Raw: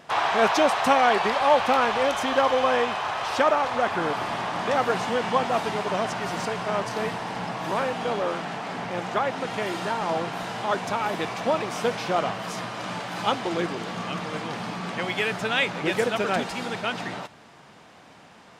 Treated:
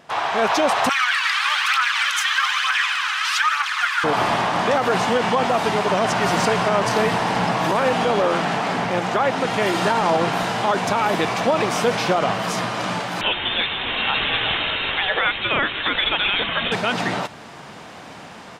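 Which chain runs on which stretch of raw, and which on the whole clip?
0.89–4.04 phaser 1.1 Hz, delay 2.7 ms + steep high-pass 1300 Hz
13.21–16.72 tilt +3.5 dB/oct + inverted band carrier 3900 Hz
whole clip: AGC; limiter -9.5 dBFS

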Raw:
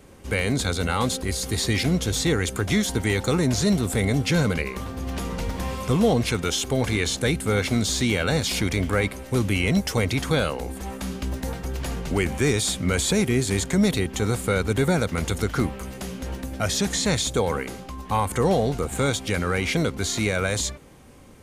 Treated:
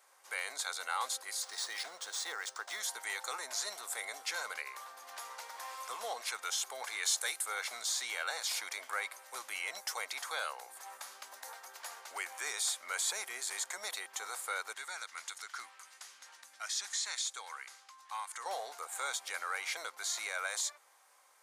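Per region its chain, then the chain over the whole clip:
1.42–2.8 bell 2300 Hz -5.5 dB 0.33 oct + decimation joined by straight lines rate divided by 3×
7.03–7.46 HPF 260 Hz + high shelf 5100 Hz +8.5 dB
14.74–18.46 LPF 8500 Hz + bell 550 Hz -13.5 dB 1.9 oct
whole clip: HPF 810 Hz 24 dB/oct; bell 2800 Hz -7.5 dB 0.74 oct; gain -7 dB

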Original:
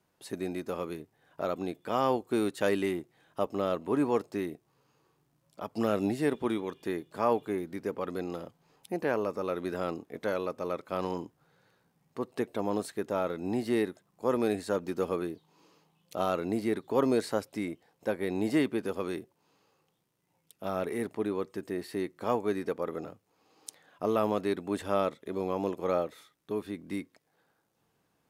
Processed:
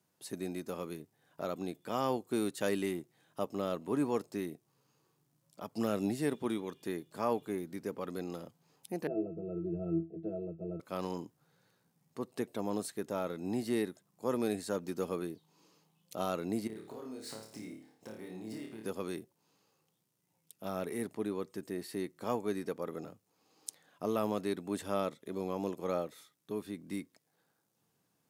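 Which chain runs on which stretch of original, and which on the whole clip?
9.07–10.8 resonant low shelf 780 Hz +13.5 dB, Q 3 + octave resonator E, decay 0.26 s
16.67–18.86 median filter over 3 samples + compressor 12:1, threshold -39 dBFS + flutter echo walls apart 4.7 m, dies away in 0.5 s
whole clip: HPF 120 Hz 12 dB/oct; tone controls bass +6 dB, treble +8 dB; gain -6 dB

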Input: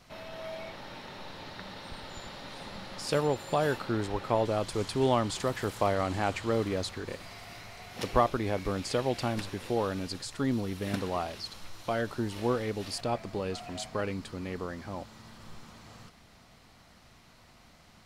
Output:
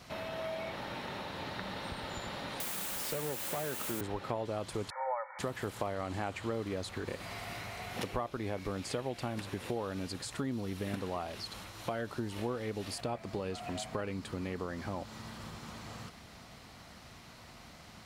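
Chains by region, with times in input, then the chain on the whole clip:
2.6–4.01 HPF 150 Hz 24 dB/oct + tube stage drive 26 dB, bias 0.45 + requantised 6-bit, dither triangular
4.9–5.39 brick-wall FIR band-pass 510–2300 Hz + comb 2.2 ms, depth 91%
whole clip: compressor 4:1, threshold -40 dBFS; dynamic EQ 5100 Hz, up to -5 dB, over -59 dBFS, Q 1.5; HPF 43 Hz; gain +5 dB

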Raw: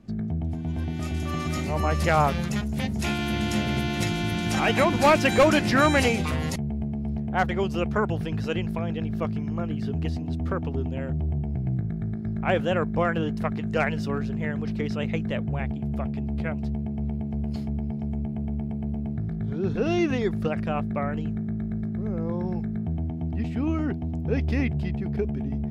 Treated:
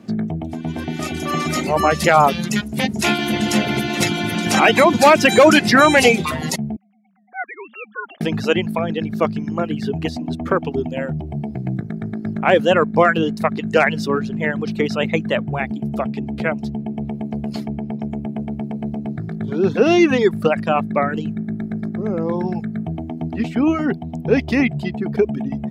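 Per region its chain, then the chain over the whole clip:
6.76–8.21 sine-wave speech + differentiator
whole clip: reverb removal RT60 1.3 s; HPF 200 Hz 12 dB/oct; maximiser +13.5 dB; gain -1 dB

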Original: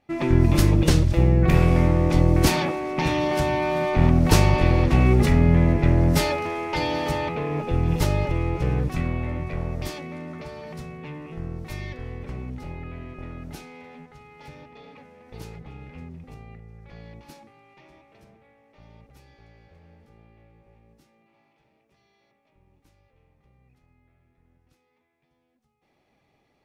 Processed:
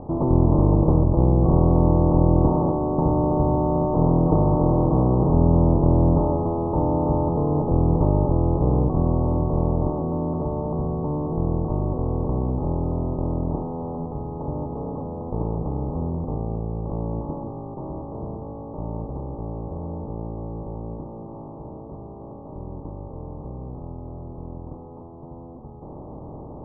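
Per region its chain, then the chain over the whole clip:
3.94–5.33 minimum comb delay 0.35 ms + HPF 180 Hz 6 dB/oct + comb 6.4 ms, depth 74%
whole clip: per-bin compression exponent 0.4; steep low-pass 1100 Hz 72 dB/oct; gain -2.5 dB

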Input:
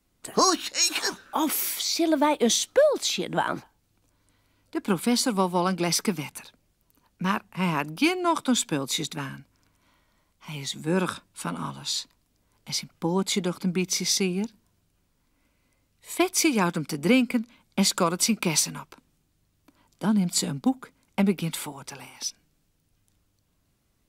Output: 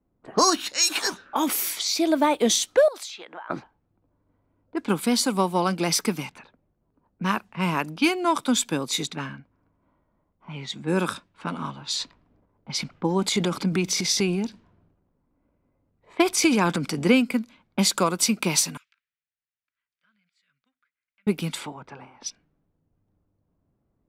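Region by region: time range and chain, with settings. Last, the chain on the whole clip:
2.88–3.5 HPF 790 Hz + compressor 20:1, threshold -34 dBFS
11.94–17.16 high shelf 11000 Hz -11 dB + transient shaper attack +2 dB, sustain +9 dB
18.77–21.27 inverse Chebyshev high-pass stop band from 910 Hz + compressor 2:1, threshold -59 dBFS
whole clip: low-pass opened by the level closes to 770 Hz, open at -24 dBFS; low shelf 83 Hz -6.5 dB; gain +1.5 dB

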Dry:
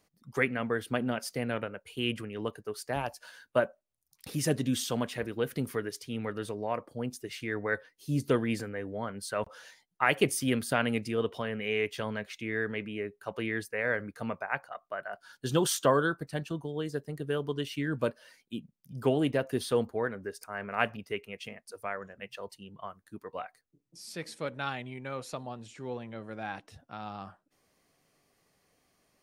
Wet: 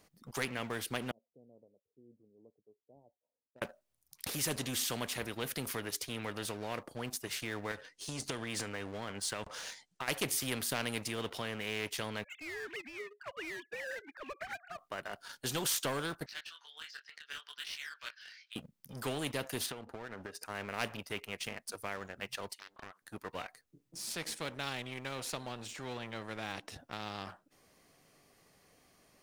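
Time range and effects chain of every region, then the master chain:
1.11–3.62 Gaussian blur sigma 19 samples + differentiator
7.71–10.08 LPF 8100 Hz 24 dB/oct + high shelf 5700 Hz +9.5 dB + compressor 5:1, threshold -31 dBFS
12.24–14.78 sine-wave speech + HPF 820 Hz 6 dB/oct
16.26–18.56 elliptic band-pass 1500–5400 Hz, stop band 80 dB + upward compressor, threshold -45 dBFS + detuned doubles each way 23 cents
19.66–20.46 LPF 3900 Hz 6 dB/oct + notch comb 1100 Hz + compressor 20:1, threshold -40 dBFS
22.53–23.02 HPF 1100 Hz + compressor 3:1, threshold -54 dBFS + Doppler distortion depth 0.87 ms
whole clip: dynamic EQ 1300 Hz, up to -5 dB, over -43 dBFS, Q 0.88; sample leveller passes 1; spectral compressor 2:1; gain -4 dB

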